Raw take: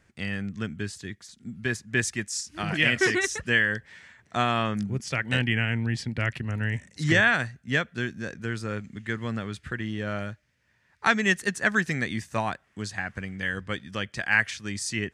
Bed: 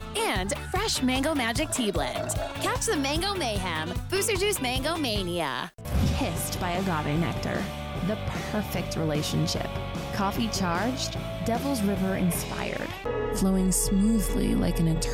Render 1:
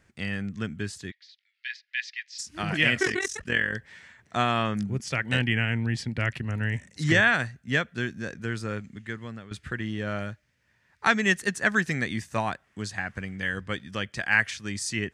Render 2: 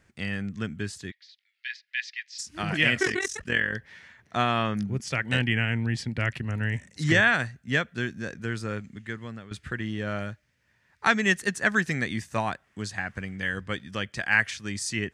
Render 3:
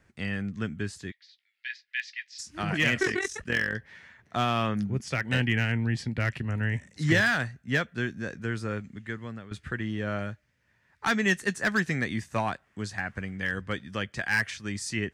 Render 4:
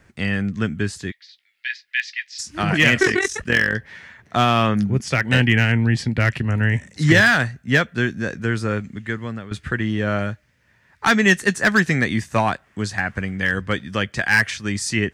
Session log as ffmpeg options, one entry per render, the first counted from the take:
ffmpeg -i in.wav -filter_complex "[0:a]asplit=3[link_01][link_02][link_03];[link_01]afade=type=out:start_time=1.1:duration=0.02[link_04];[link_02]asuperpass=centerf=3000:order=8:qfactor=1,afade=type=in:start_time=1.1:duration=0.02,afade=type=out:start_time=2.38:duration=0.02[link_05];[link_03]afade=type=in:start_time=2.38:duration=0.02[link_06];[link_04][link_05][link_06]amix=inputs=3:normalize=0,asplit=3[link_07][link_08][link_09];[link_07]afade=type=out:start_time=3.01:duration=0.02[link_10];[link_08]tremolo=f=44:d=0.788,afade=type=in:start_time=3.01:duration=0.02,afade=type=out:start_time=3.73:duration=0.02[link_11];[link_09]afade=type=in:start_time=3.73:duration=0.02[link_12];[link_10][link_11][link_12]amix=inputs=3:normalize=0,asplit=2[link_13][link_14];[link_13]atrim=end=9.51,asetpts=PTS-STARTPTS,afade=type=out:start_time=8.68:duration=0.83:silence=0.211349[link_15];[link_14]atrim=start=9.51,asetpts=PTS-STARTPTS,afade=type=in:duration=0.004:curve=hsin:silence=0.211349[link_16];[link_15][link_16]concat=n=2:v=0:a=1" out.wav
ffmpeg -i in.wav -filter_complex "[0:a]asettb=1/sr,asplit=3[link_01][link_02][link_03];[link_01]atrim=end=3.604[link_04];[link_02]atrim=start=3.6:end=4.97,asetpts=PTS-STARTPTS,afade=type=in:duration=0.004:curve=qsin,afade=type=out:start_time=1.366:duration=0.004:curve=qsin,equalizer=frequency=7800:width=4.2:gain=-9.5[link_05];[link_03]atrim=start=4.966[link_06];[link_04][link_05]acrossfade=duration=0.004:curve1=hsin:curve2=qsin[link_07];[link_07][link_06]acrossfade=duration=0.004:curve1=qsin:curve2=hsin" out.wav
ffmpeg -i in.wav -filter_complex "[0:a]acrossover=split=430|2400[link_01][link_02][link_03];[link_02]volume=22.5dB,asoftclip=hard,volume=-22.5dB[link_04];[link_03]flanger=delay=9.7:depth=7.3:regen=-31:speed=0.21:shape=triangular[link_05];[link_01][link_04][link_05]amix=inputs=3:normalize=0" out.wav
ffmpeg -i in.wav -af "volume=9.5dB,alimiter=limit=-3dB:level=0:latency=1" out.wav

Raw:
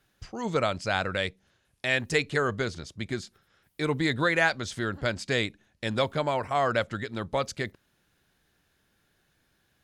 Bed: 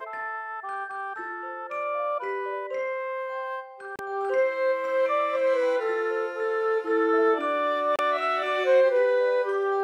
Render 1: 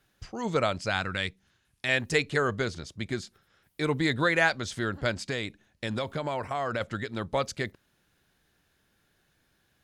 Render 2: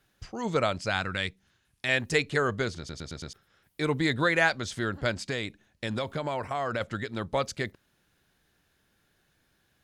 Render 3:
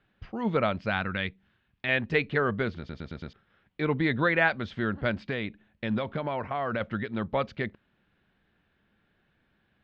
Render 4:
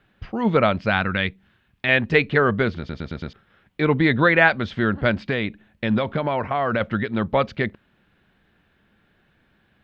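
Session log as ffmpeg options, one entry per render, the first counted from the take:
ffmpeg -i in.wav -filter_complex "[0:a]asettb=1/sr,asplit=3[link_01][link_02][link_03];[link_01]atrim=end=0.904[link_04];[link_02]atrim=start=0.9:end=1.89,asetpts=PTS-STARTPTS,afade=type=in:duration=0.004:curve=qsin,afade=type=out:start_time=0.986:duration=0.004:curve=qsin,equalizer=frequency=550:width_type=o:width=0.87:gain=-9[link_05];[link_03]atrim=start=1.886[link_06];[link_04][link_05]acrossfade=duration=0.004:curve1=hsin:curve2=qsin[link_07];[link_07][link_06]acrossfade=duration=0.004:curve1=qsin:curve2=hsin,asplit=3[link_08][link_09][link_10];[link_08]afade=type=out:start_time=5.28:duration=0.02[link_11];[link_09]acompressor=threshold=-26dB:ratio=6:attack=3.2:release=140:knee=1:detection=peak,afade=type=in:start_time=5.28:duration=0.02,afade=type=out:start_time=6.8:duration=0.02[link_12];[link_10]afade=type=in:start_time=6.8:duration=0.02[link_13];[link_11][link_12][link_13]amix=inputs=3:normalize=0" out.wav
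ffmpeg -i in.wav -filter_complex "[0:a]asplit=6[link_01][link_02][link_03][link_04][link_05][link_06];[link_01]atrim=end=2.892[link_07];[link_02]atrim=start=2.778:end=2.892[link_08];[link_03]atrim=start=2.778:end=2.892[link_09];[link_04]atrim=start=2.778:end=2.892[link_10];[link_05]atrim=start=2.778:end=2.892[link_11];[link_06]atrim=start=3.328[link_12];[link_07][link_08]acrossfade=duration=0.004:curve1=hsin:curve2=hsin[link_13];[link_13][link_09]acrossfade=duration=0.004:curve1=hsin:curve2=hsin[link_14];[link_14][link_10]acrossfade=duration=0.004:curve1=hsin:curve2=hsin[link_15];[link_15][link_11]acrossfade=duration=0.004:curve1=hsin:curve2=hsin[link_16];[link_16][link_12]acrossfade=duration=0.004:curve1=hsin:curve2=hsin" out.wav
ffmpeg -i in.wav -af "lowpass=frequency=3200:width=0.5412,lowpass=frequency=3200:width=1.3066,equalizer=frequency=210:width=4.1:gain=7" out.wav
ffmpeg -i in.wav -af "volume=8dB" out.wav

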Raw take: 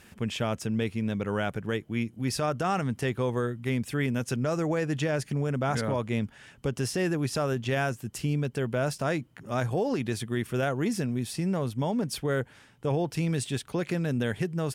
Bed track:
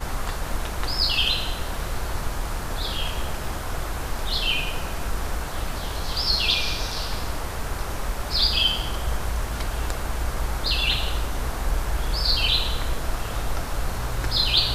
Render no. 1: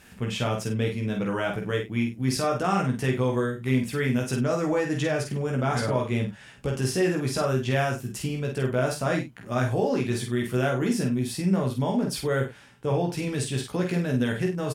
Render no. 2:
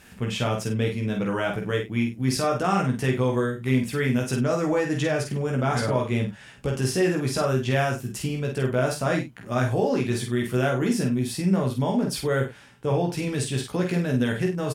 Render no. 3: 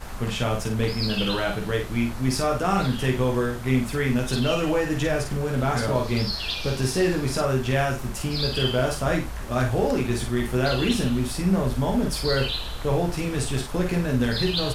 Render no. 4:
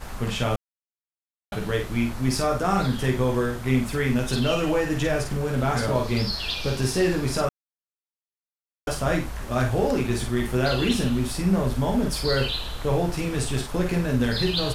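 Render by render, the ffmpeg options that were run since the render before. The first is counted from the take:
ffmpeg -i in.wav -filter_complex "[0:a]asplit=2[link_01][link_02];[link_02]adelay=46,volume=-6.5dB[link_03];[link_01][link_03]amix=inputs=2:normalize=0,aecho=1:1:16|51:0.668|0.422" out.wav
ffmpeg -i in.wav -af "volume=1.5dB" out.wav
ffmpeg -i in.wav -i bed.wav -filter_complex "[1:a]volume=-7.5dB[link_01];[0:a][link_01]amix=inputs=2:normalize=0" out.wav
ffmpeg -i in.wav -filter_complex "[0:a]asettb=1/sr,asplit=3[link_01][link_02][link_03];[link_01]atrim=end=2.454[link_04];[link_02]atrim=start=2.45:end=3.29,asetpts=PTS-STARTPTS,afade=type=in:duration=0.004:curve=qsin,afade=type=out:start_time=0.836:duration=0.004:curve=qsin,equalizer=frequency=2800:width_type=o:width=0.28:gain=-6.5[link_05];[link_03]atrim=start=3.286[link_06];[link_04][link_05]acrossfade=duration=0.004:curve1=hsin:curve2=qsin[link_07];[link_07][link_06]acrossfade=duration=0.004:curve1=qsin:curve2=hsin,asplit=5[link_08][link_09][link_10][link_11][link_12];[link_08]atrim=end=0.56,asetpts=PTS-STARTPTS,afade=type=out:start_time=0.556:duration=0.004:curve=hsin[link_13];[link_09]atrim=start=0.56:end=1.52,asetpts=PTS-STARTPTS,volume=0[link_14];[link_10]atrim=start=1.52:end=7.49,asetpts=PTS-STARTPTS,afade=type=in:duration=0.004:curve=hsin,afade=type=out:start_time=5.966:duration=0.004:curve=hsin[link_15];[link_11]atrim=start=7.49:end=8.87,asetpts=PTS-STARTPTS,volume=0[link_16];[link_12]atrim=start=8.87,asetpts=PTS-STARTPTS,afade=type=in:duration=0.004:curve=hsin[link_17];[link_13][link_14][link_15][link_16][link_17]concat=n=5:v=0:a=1" out.wav

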